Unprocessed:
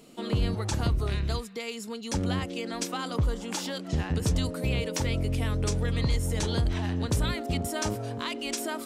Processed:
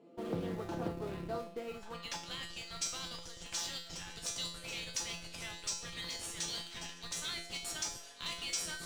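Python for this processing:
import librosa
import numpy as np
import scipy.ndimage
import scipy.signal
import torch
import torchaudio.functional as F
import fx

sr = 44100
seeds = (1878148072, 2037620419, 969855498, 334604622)

p1 = fx.high_shelf(x, sr, hz=6300.0, db=-3.5)
p2 = p1 + fx.echo_thinned(p1, sr, ms=1139, feedback_pct=57, hz=1100.0, wet_db=-12.0, dry=0)
p3 = fx.filter_sweep_bandpass(p2, sr, from_hz=370.0, to_hz=6000.0, start_s=1.67, end_s=2.28, q=0.89)
p4 = scipy.signal.sosfilt(scipy.signal.butter(2, 74.0, 'highpass', fs=sr, output='sos'), p3)
p5 = fx.low_shelf(p4, sr, hz=210.0, db=-8.0)
p6 = fx.schmitt(p5, sr, flips_db=-40.5)
p7 = p5 + (p6 * librosa.db_to_amplitude(-6.0))
p8 = fx.comb_fb(p7, sr, f0_hz=170.0, decay_s=0.52, harmonics='all', damping=0.0, mix_pct=90)
p9 = fx.doppler_dist(p8, sr, depth_ms=0.26)
y = p9 * librosa.db_to_amplitude(12.5)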